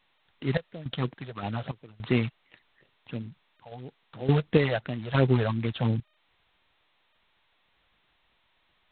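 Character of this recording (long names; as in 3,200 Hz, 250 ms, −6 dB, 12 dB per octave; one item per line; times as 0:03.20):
sample-and-hold tremolo, depth 95%
phaser sweep stages 8, 2.9 Hz, lowest notch 280–1,300 Hz
G.726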